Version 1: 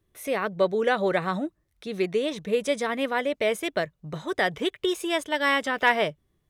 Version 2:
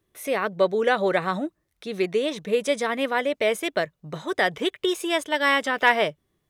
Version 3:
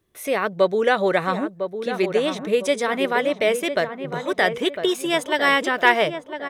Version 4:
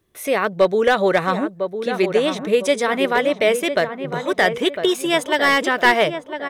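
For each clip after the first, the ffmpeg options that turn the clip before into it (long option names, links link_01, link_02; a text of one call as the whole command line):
ffmpeg -i in.wav -af "lowshelf=frequency=110:gain=-11,volume=2.5dB" out.wav
ffmpeg -i in.wav -filter_complex "[0:a]asplit=2[link_01][link_02];[link_02]adelay=1004,lowpass=frequency=1500:poles=1,volume=-8dB,asplit=2[link_03][link_04];[link_04]adelay=1004,lowpass=frequency=1500:poles=1,volume=0.4,asplit=2[link_05][link_06];[link_06]adelay=1004,lowpass=frequency=1500:poles=1,volume=0.4,asplit=2[link_07][link_08];[link_08]adelay=1004,lowpass=frequency=1500:poles=1,volume=0.4,asplit=2[link_09][link_10];[link_10]adelay=1004,lowpass=frequency=1500:poles=1,volume=0.4[link_11];[link_01][link_03][link_05][link_07][link_09][link_11]amix=inputs=6:normalize=0,volume=2.5dB" out.wav
ffmpeg -i in.wav -af "aeval=exprs='clip(val(0),-1,0.299)':channel_layout=same,volume=3dB" out.wav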